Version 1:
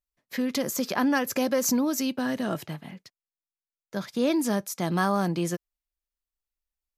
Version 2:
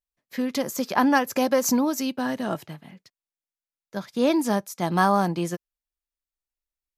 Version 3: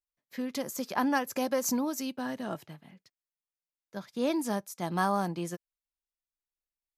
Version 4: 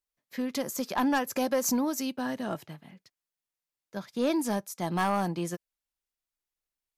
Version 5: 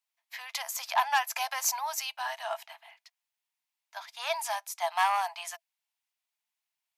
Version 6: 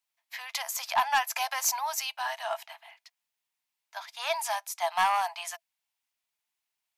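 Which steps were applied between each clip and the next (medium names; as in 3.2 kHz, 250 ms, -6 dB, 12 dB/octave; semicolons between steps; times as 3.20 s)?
dynamic bell 870 Hz, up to +6 dB, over -41 dBFS, Q 2.1; upward expansion 1.5:1, over -35 dBFS; trim +3.5 dB
dynamic bell 9.7 kHz, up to +4 dB, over -45 dBFS, Q 1; trim -8 dB
sine folder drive 5 dB, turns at -13 dBFS; trim -6 dB
rippled Chebyshev high-pass 650 Hz, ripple 6 dB; trim +7 dB
saturation -16.5 dBFS, distortion -22 dB; trim +2 dB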